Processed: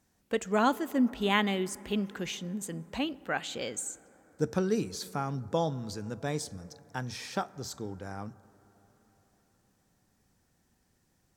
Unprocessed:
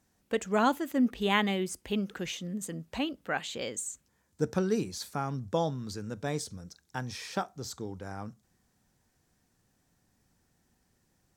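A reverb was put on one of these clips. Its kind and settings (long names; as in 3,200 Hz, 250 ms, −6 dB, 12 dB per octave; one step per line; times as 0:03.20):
dense smooth reverb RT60 4.7 s, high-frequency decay 0.25×, DRR 19.5 dB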